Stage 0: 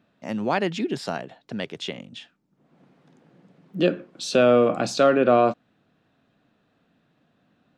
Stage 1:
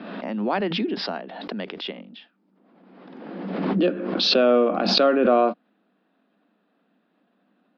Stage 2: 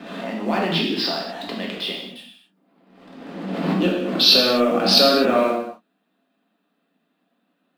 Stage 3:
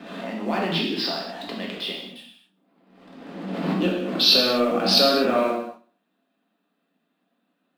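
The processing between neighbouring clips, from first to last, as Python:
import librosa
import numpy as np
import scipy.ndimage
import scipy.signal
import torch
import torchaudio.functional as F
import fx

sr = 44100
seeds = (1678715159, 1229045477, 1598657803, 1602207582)

y1 = scipy.signal.sosfilt(scipy.signal.cheby1(5, 1.0, [190.0, 5000.0], 'bandpass', fs=sr, output='sos'), x)
y1 = fx.high_shelf(y1, sr, hz=3600.0, db=-10.5)
y1 = fx.pre_swell(y1, sr, db_per_s=35.0)
y2 = fx.leveller(y1, sr, passes=1)
y2 = fx.high_shelf(y2, sr, hz=4000.0, db=11.0)
y2 = fx.rev_gated(y2, sr, seeds[0], gate_ms=290, shape='falling', drr_db=-2.5)
y2 = y2 * 10.0 ** (-5.5 / 20.0)
y3 = fx.echo_feedback(y2, sr, ms=64, feedback_pct=47, wet_db=-18.5)
y3 = y3 * 10.0 ** (-3.0 / 20.0)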